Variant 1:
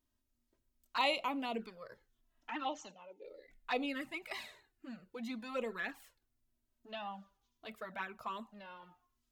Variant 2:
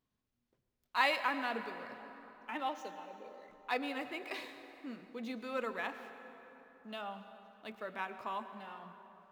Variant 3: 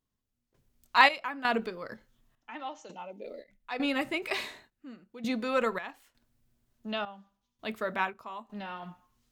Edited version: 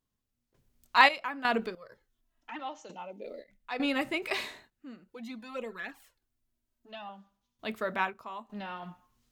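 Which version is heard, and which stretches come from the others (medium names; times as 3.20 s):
3
1.75–2.59 s: from 1
5.08–7.09 s: from 1
not used: 2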